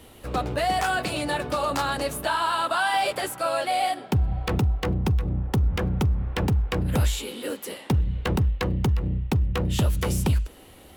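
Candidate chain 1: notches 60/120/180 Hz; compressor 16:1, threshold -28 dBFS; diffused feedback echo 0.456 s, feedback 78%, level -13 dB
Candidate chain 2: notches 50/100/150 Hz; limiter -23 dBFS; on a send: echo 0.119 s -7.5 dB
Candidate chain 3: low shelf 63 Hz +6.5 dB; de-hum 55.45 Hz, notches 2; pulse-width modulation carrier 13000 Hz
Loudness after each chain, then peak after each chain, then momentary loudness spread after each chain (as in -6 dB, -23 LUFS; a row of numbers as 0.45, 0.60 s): -32.5, -31.0, -24.0 LUFS; -15.0, -20.0, -11.0 dBFS; 3, 3, 4 LU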